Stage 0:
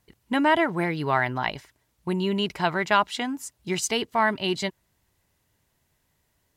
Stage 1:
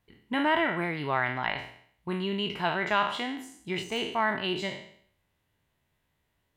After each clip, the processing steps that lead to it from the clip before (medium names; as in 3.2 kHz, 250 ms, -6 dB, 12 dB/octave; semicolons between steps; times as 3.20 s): spectral sustain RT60 0.60 s; de-esser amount 60%; resonant high shelf 4.2 kHz -6.5 dB, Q 1.5; trim -6 dB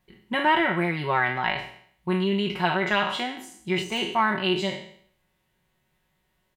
comb 5.4 ms; trim +3 dB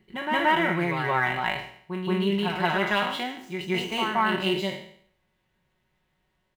median filter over 5 samples; reverse echo 175 ms -6 dB; trim -1.5 dB